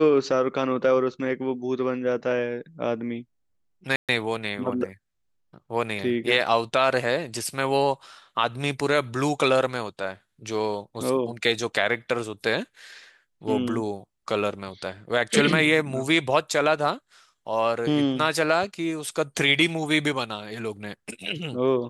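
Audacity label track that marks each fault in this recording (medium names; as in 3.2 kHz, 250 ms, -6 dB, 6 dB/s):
3.960000	4.090000	dropout 127 ms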